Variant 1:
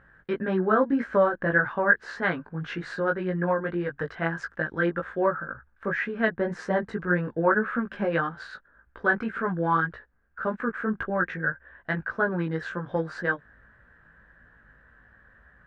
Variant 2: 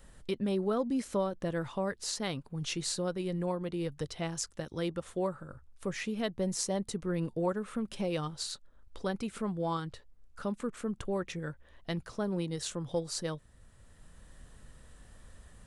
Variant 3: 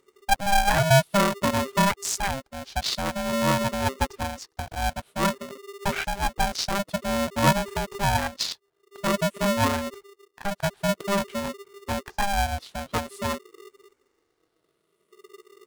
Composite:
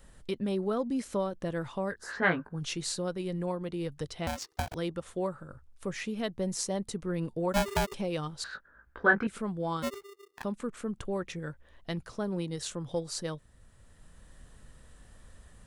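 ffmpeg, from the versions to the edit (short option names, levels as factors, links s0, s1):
-filter_complex "[0:a]asplit=2[s0][s1];[2:a]asplit=3[s2][s3][s4];[1:a]asplit=6[s5][s6][s7][s8][s9][s10];[s5]atrim=end=2.15[s11];[s0]atrim=start=1.91:end=2.63[s12];[s6]atrim=start=2.39:end=4.272[s13];[s2]atrim=start=4.268:end=4.742[s14];[s7]atrim=start=4.738:end=7.542[s15];[s3]atrim=start=7.538:end=7.942[s16];[s8]atrim=start=7.938:end=8.442[s17];[s1]atrim=start=8.438:end=9.272[s18];[s9]atrim=start=9.268:end=9.84[s19];[s4]atrim=start=9.82:end=10.45[s20];[s10]atrim=start=10.43[s21];[s11][s12]acrossfade=d=0.24:c1=tri:c2=tri[s22];[s22][s13]acrossfade=d=0.24:c1=tri:c2=tri[s23];[s23][s14]acrossfade=d=0.004:c1=hsin:c2=hsin[s24];[s24][s15]acrossfade=d=0.004:c1=hsin:c2=hsin[s25];[s25][s16]acrossfade=d=0.004:c1=hsin:c2=hsin[s26];[s26][s17]acrossfade=d=0.004:c1=hsin:c2=hsin[s27];[s27][s18]acrossfade=d=0.004:c1=hsin:c2=hsin[s28];[s28][s19]acrossfade=d=0.004:c1=hsin:c2=hsin[s29];[s29][s20]acrossfade=d=0.02:c1=tri:c2=tri[s30];[s30][s21]acrossfade=d=0.02:c1=tri:c2=tri"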